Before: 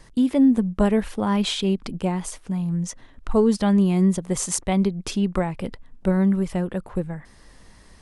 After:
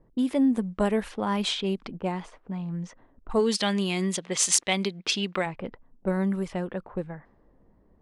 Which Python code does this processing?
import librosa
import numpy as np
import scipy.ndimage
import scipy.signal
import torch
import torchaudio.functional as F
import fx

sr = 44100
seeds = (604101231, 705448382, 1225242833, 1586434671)

p1 = fx.weighting(x, sr, curve='D', at=(3.39, 5.45), fade=0.02)
p2 = fx.env_lowpass(p1, sr, base_hz=410.0, full_db=-17.5)
p3 = fx.low_shelf(p2, sr, hz=200.0, db=-11.0)
p4 = 10.0 ** (-14.0 / 20.0) * np.tanh(p3 / 10.0 ** (-14.0 / 20.0))
p5 = p3 + (p4 * 10.0 ** (-12.0 / 20.0))
y = p5 * 10.0 ** (-3.5 / 20.0)